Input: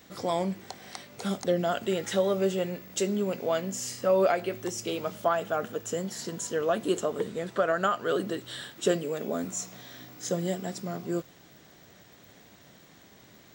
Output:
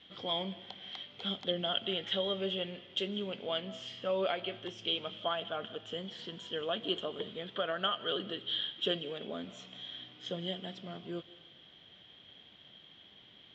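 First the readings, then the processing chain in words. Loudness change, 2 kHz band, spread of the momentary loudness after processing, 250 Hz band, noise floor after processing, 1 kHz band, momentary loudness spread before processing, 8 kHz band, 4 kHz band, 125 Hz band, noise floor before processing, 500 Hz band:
-6.5 dB, -6.5 dB, 22 LU, -9.5 dB, -58 dBFS, -9.0 dB, 10 LU, under -25 dB, +6.5 dB, -9.5 dB, -55 dBFS, -9.5 dB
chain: four-pole ladder low-pass 3.3 kHz, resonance 90%; algorithmic reverb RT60 0.84 s, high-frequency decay 1×, pre-delay 120 ms, DRR 17.5 dB; trim +3.5 dB

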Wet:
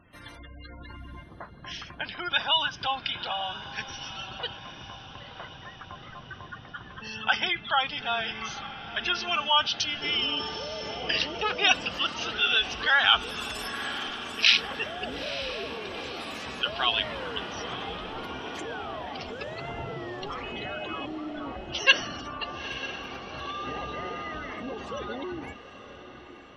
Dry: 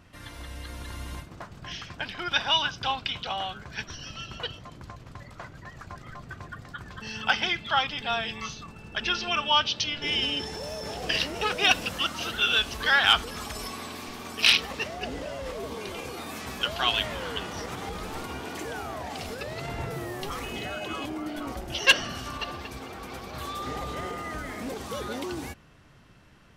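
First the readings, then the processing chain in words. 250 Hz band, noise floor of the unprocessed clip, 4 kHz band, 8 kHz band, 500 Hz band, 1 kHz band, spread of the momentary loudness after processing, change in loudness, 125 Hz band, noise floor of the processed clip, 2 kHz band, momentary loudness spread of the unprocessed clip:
-2.0 dB, -49 dBFS, 0.0 dB, -4.0 dB, -0.5 dB, 0.0 dB, 20 LU, 0.0 dB, -4.5 dB, -47 dBFS, 0.0 dB, 19 LU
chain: spectral gate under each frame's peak -20 dB strong; bass shelf 170 Hz -7 dB; echo that smears into a reverb 916 ms, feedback 58%, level -12.5 dB

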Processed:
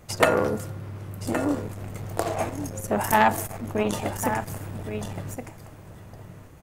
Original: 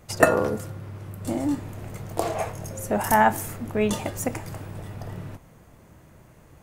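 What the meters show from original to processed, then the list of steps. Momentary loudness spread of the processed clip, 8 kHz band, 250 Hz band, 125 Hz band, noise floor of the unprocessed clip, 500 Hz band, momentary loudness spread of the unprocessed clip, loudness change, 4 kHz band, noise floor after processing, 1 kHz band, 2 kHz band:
23 LU, -0.5 dB, -0.5 dB, +0.5 dB, -52 dBFS, -0.5 dB, 18 LU, -1.0 dB, +3.0 dB, -46 dBFS, -0.5 dB, -0.5 dB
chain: delay 1119 ms -10 dB; transformer saturation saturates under 1.6 kHz; trim +1.5 dB

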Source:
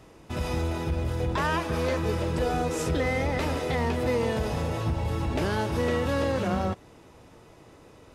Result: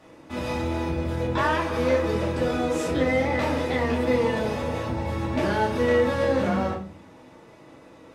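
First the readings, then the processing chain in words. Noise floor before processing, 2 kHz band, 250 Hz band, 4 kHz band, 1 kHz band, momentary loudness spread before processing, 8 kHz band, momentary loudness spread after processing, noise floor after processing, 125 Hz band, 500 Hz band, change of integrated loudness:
-53 dBFS, +3.5 dB, +4.0 dB, +1.5 dB, +3.0 dB, 3 LU, -1.5 dB, 7 LU, -49 dBFS, -1.5 dB, +4.5 dB, +3.0 dB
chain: high-pass 270 Hz 6 dB/octave; treble shelf 4.5 kHz -7.5 dB; simulated room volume 250 m³, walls furnished, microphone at 2.4 m

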